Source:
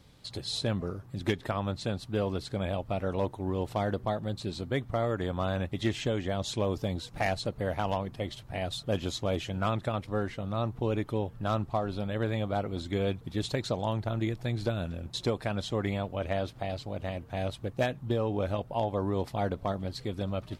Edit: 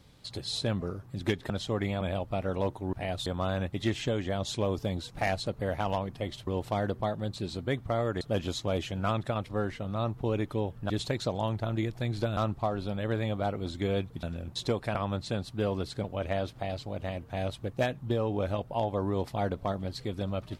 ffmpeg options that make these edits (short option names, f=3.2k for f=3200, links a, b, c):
-filter_complex "[0:a]asplit=12[a][b][c][d][e][f][g][h][i][j][k][l];[a]atrim=end=1.502[m];[b]atrim=start=15.528:end=16.042[n];[c]atrim=start=2.588:end=3.512[o];[d]atrim=start=8.458:end=8.792[p];[e]atrim=start=5.248:end=8.462[q];[f]atrim=start=3.508:end=5.252[r];[g]atrim=start=8.788:end=11.482[s];[h]atrim=start=13.338:end=14.812[t];[i]atrim=start=11.478:end=13.342[u];[j]atrim=start=14.808:end=15.532[v];[k]atrim=start=1.498:end=2.592[w];[l]atrim=start=16.038[x];[m][n]acrossfade=d=0.004:c1=hsin:c2=hsin[y];[y][o]acrossfade=d=0.004:c1=hsin:c2=hsin[z];[z][p]acrossfade=d=0.004:c1=hsin:c2=hsin[aa];[aa][q]acrossfade=d=0.004:c1=hsin:c2=hsin[ab];[ab][r]acrossfade=d=0.004:c1=hsin:c2=hsin[ac];[ac][s]acrossfade=d=0.004:c1=hsin:c2=hsin[ad];[ad][t]acrossfade=d=0.004:c1=hsin:c2=hsin[ae];[ae][u]acrossfade=d=0.004:c1=hsin:c2=hsin[af];[af][v]acrossfade=d=0.004:c1=hsin:c2=hsin[ag];[ag][w]acrossfade=d=0.004:c1=hsin:c2=hsin[ah];[ah][x]acrossfade=d=0.004:c1=hsin:c2=hsin"